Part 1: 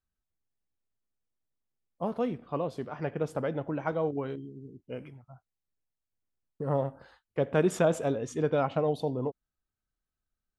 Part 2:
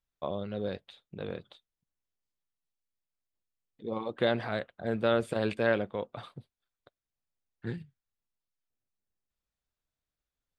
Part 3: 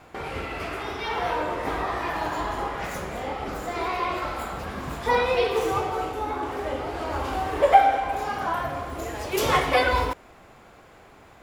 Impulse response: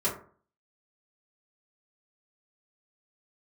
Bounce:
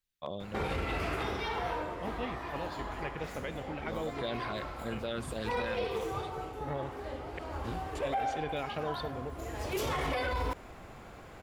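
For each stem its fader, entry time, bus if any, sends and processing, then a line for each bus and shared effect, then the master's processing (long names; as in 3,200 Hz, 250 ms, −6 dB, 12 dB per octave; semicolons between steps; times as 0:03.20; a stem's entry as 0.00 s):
−9.0 dB, 0.00 s, muted 0:07.39–0:07.95, no send, flat-topped bell 2,900 Hz +14.5 dB
−5.0 dB, 0.00 s, no send, auto-filter notch saw down 3.8 Hz 280–3,200 Hz; high-shelf EQ 2,600 Hz +9.5 dB
−0.5 dB, 0.40 s, no send, low-shelf EQ 200 Hz +7 dB; automatic ducking −12 dB, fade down 0.95 s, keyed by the first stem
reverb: not used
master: brickwall limiter −24.5 dBFS, peak gain reduction 16.5 dB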